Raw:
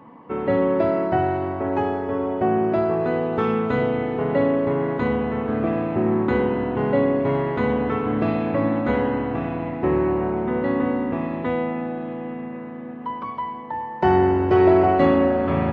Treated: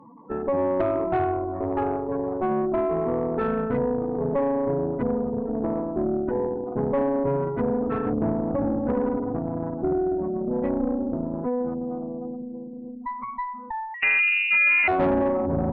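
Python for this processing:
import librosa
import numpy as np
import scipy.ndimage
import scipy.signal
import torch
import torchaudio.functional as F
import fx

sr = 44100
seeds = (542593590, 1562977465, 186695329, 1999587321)

y = fx.spec_gate(x, sr, threshold_db=-10, keep='strong')
y = fx.highpass(y, sr, hz=fx.line((5.43, 150.0), (6.74, 390.0)), slope=12, at=(5.43, 6.74), fade=0.02)
y = fx.tube_stage(y, sr, drive_db=19.0, bias=0.75)
y = fx.freq_invert(y, sr, carrier_hz=2800, at=(13.94, 14.88))
y = F.gain(torch.from_numpy(y), 2.5).numpy()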